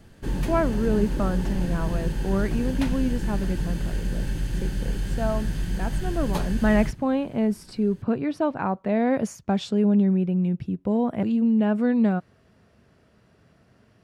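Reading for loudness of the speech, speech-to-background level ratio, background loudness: -25.0 LUFS, 4.5 dB, -29.5 LUFS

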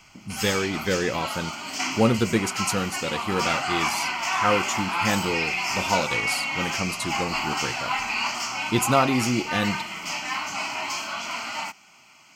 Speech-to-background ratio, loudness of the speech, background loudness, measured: 0.0 dB, -27.0 LUFS, -27.0 LUFS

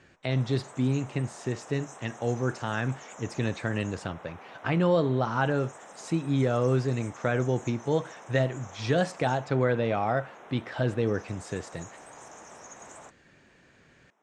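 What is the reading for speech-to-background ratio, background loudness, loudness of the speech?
18.0 dB, -47.0 LUFS, -29.0 LUFS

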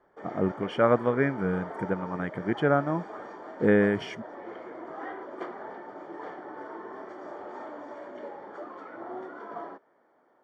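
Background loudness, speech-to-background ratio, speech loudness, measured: -41.0 LUFS, 14.0 dB, -27.0 LUFS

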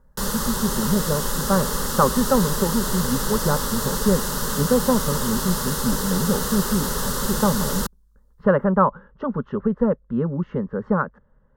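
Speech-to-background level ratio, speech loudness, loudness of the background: 1.0 dB, -24.0 LUFS, -25.0 LUFS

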